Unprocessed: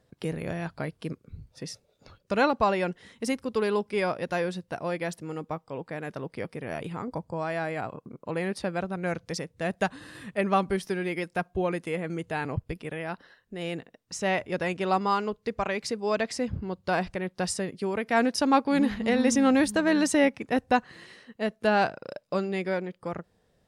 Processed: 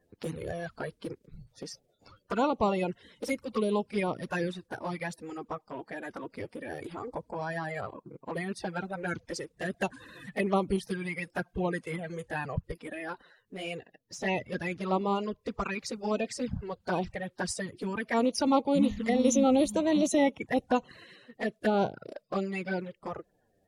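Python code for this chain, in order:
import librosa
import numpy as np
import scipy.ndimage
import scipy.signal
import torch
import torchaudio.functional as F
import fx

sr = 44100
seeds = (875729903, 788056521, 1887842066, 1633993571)

y = fx.spec_quant(x, sr, step_db=30)
y = fx.peak_eq(y, sr, hz=8200.0, db=-14.5, octaves=0.29, at=(13.77, 15.41))
y = fx.env_flanger(y, sr, rest_ms=11.8, full_db=-23.0)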